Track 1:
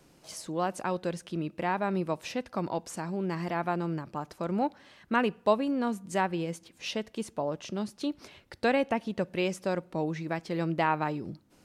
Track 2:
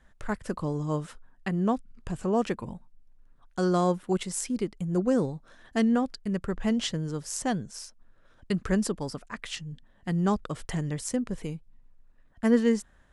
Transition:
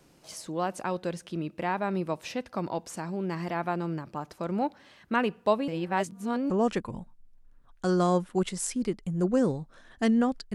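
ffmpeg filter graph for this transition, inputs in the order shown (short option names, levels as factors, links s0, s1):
-filter_complex "[0:a]apad=whole_dur=10.54,atrim=end=10.54,asplit=2[s0][s1];[s0]atrim=end=5.682[s2];[s1]atrim=start=5.678:end=6.502,asetpts=PTS-STARTPTS,areverse[s3];[1:a]atrim=start=2.238:end=6.28[s4];[s2][s3]acrossfade=d=0.004:c1=hsin:c2=hsin[s5];[s5][s4]acrossfade=d=0.004:c1=hsin:c2=hsin"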